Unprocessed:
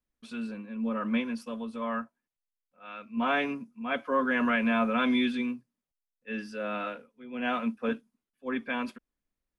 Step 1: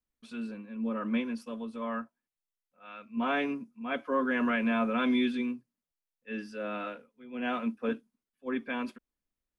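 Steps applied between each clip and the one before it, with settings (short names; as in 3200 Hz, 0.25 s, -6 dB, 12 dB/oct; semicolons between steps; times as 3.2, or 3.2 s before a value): dynamic EQ 340 Hz, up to +6 dB, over -44 dBFS, Q 1.8; gain -3.5 dB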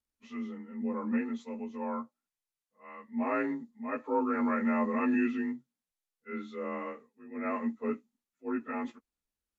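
inharmonic rescaling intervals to 89%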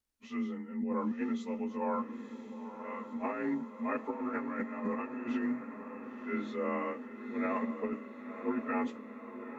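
negative-ratio compressor -33 dBFS, ratio -0.5; on a send: diffused feedback echo 0.981 s, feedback 61%, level -9.5 dB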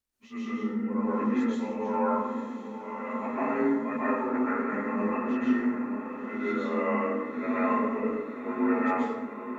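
plate-style reverb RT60 1.2 s, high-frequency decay 0.5×, pre-delay 0.115 s, DRR -8.5 dB; gain -1.5 dB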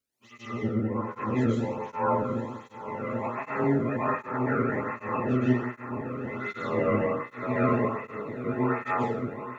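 octaver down 1 oct, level +3 dB; tape flanging out of phase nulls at 1.3 Hz, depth 1.2 ms; gain +4 dB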